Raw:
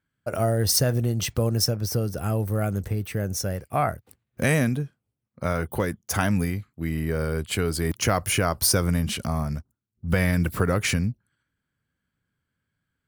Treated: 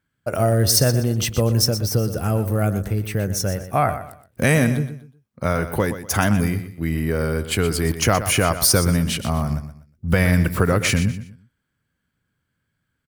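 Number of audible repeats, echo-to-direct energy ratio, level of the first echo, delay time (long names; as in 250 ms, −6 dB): 3, −11.0 dB, −11.5 dB, 122 ms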